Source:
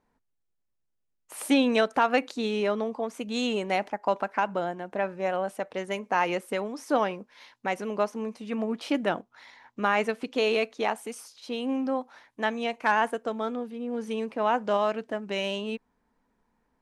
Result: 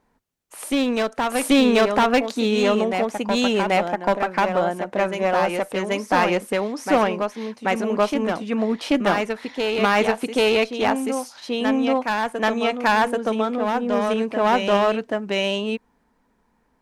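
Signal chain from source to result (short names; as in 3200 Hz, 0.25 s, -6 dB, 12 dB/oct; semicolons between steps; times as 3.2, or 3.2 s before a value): one-sided clip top -26 dBFS, bottom -15 dBFS; reverse echo 0.784 s -5 dB; gain +7.5 dB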